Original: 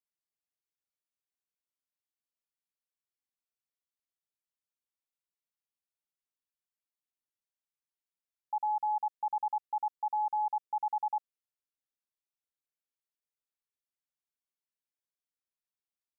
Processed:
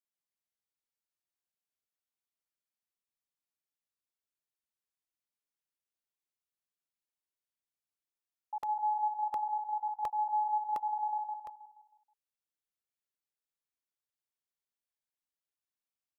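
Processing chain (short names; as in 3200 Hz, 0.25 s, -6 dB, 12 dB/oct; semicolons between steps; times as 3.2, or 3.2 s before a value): feedback echo 0.159 s, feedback 45%, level -3 dB; crackling interface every 0.71 s, samples 64, repeat, from 0.82; gain -5 dB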